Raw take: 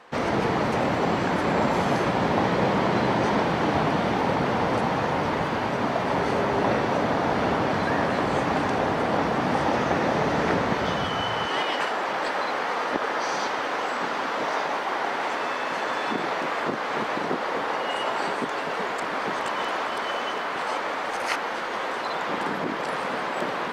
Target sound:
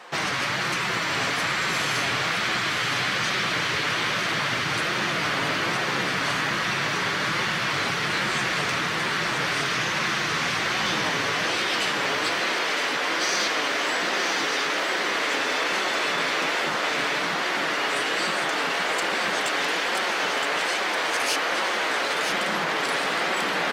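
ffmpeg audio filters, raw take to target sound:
-filter_complex "[0:a]highpass=f=310:p=1,highshelf=f=2.5k:g=7.5,afftfilt=real='re*lt(hypot(re,im),0.141)':imag='im*lt(hypot(re,im),0.141)':win_size=1024:overlap=0.75,asoftclip=type=tanh:threshold=-20dB,flanger=delay=5.2:depth=2.2:regen=-28:speed=1.2:shape=triangular,asplit=2[a][b];[b]aecho=0:1:966:0.473[c];[a][c]amix=inputs=2:normalize=0,volume=8.5dB"

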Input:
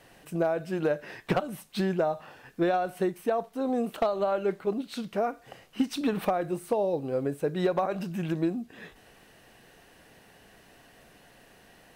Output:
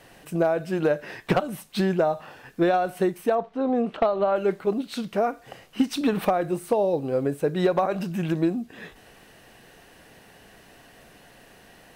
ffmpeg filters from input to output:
-filter_complex "[0:a]asettb=1/sr,asplit=3[a][b][c];[a]atrim=end=3.354[d];[b]atrim=start=3.35:end=4.36,asetpts=PTS-STARTPTS,afade=t=in:d=0.004:c=qsin,afade=t=out:st=1.006:d=0.004:c=qsin,lowpass=3.1k[e];[c]atrim=start=4.356[f];[d][e]acrossfade=d=0.004:c1=hsin:c2=qsin[g];[g][f]acrossfade=d=0.004:c1=qsin:c2=hsin,volume=4.5dB"

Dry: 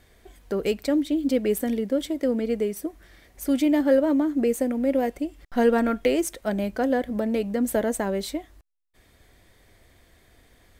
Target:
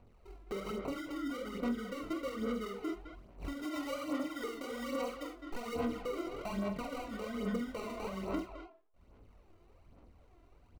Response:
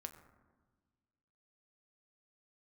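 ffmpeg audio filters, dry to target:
-filter_complex "[0:a]acrossover=split=7900[a][b];[b]acompressor=threshold=-50dB:ratio=4:attack=1:release=60[c];[a][c]amix=inputs=2:normalize=0,acrusher=samples=26:mix=1:aa=0.000001,highshelf=f=3.6k:g=-10,bandreject=f=130.8:t=h:w=4,bandreject=f=261.6:t=h:w=4,bandreject=f=392.4:t=h:w=4,bandreject=f=523.2:t=h:w=4,bandreject=f=654:t=h:w=4,bandreject=f=784.8:t=h:w=4,bandreject=f=915.6:t=h:w=4,bandreject=f=1.0464k:t=h:w=4,bandreject=f=1.1772k:t=h:w=4,bandreject=f=1.308k:t=h:w=4,bandreject=f=1.4388k:t=h:w=4,bandreject=f=1.5696k:t=h:w=4,bandreject=f=1.7004k:t=h:w=4,flanger=delay=19.5:depth=6.4:speed=2.7,agate=range=-12dB:threshold=-46dB:ratio=16:detection=peak,asettb=1/sr,asplit=3[d][e][f];[d]atrim=end=3.614[g];[e]atrim=start=3.61:end=5.76,asetpts=PTS-STARTPTS,afade=t=in:d=0.004:c=qsin,afade=t=out:st=2.146:d=0.004:c=qsin,bass=f=250:g=-8,treble=f=4k:g=3[h];[f]atrim=start=5.756[i];[g][h]acrossfade=d=0.004:c1=hsin:c2=qsin[j];[j][i]acrossfade=d=0.004:c1=qsin:c2=hsin,acompressor=threshold=-44dB:ratio=3,asplit=2[k][l];[l]adelay=46,volume=-2.5dB[m];[k][m]amix=inputs=2:normalize=0,asplit=2[n][o];[o]adelay=210,highpass=300,lowpass=3.4k,asoftclip=type=hard:threshold=-33.5dB,volume=-8dB[p];[n][p]amix=inputs=2:normalize=0,alimiter=level_in=13.5dB:limit=-24dB:level=0:latency=1:release=301,volume=-13.5dB,aphaser=in_gain=1:out_gain=1:delay=3:decay=0.53:speed=1.2:type=sinusoidal,volume=5.5dB"

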